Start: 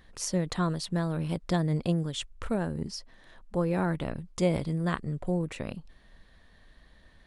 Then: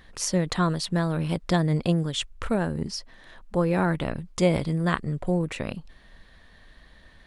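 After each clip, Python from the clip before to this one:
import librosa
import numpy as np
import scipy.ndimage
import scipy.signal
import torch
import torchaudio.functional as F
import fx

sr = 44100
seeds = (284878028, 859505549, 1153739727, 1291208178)

y = fx.peak_eq(x, sr, hz=2200.0, db=3.0, octaves=2.7)
y = F.gain(torch.from_numpy(y), 4.0).numpy()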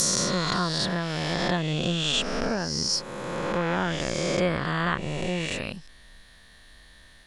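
y = fx.spec_swells(x, sr, rise_s=2.42)
y = fx.env_lowpass_down(y, sr, base_hz=2900.0, full_db=-16.5)
y = scipy.signal.lfilter([1.0, -0.8], [1.0], y)
y = F.gain(torch.from_numpy(y), 8.0).numpy()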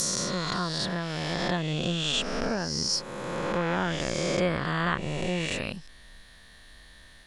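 y = fx.rider(x, sr, range_db=10, speed_s=2.0)
y = F.gain(torch.from_numpy(y), -2.0).numpy()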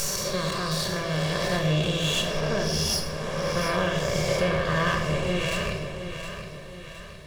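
y = fx.lower_of_two(x, sr, delay_ms=1.8)
y = fx.echo_feedback(y, sr, ms=716, feedback_pct=46, wet_db=-9.5)
y = fx.room_shoebox(y, sr, seeds[0], volume_m3=650.0, walls='mixed', distance_m=1.2)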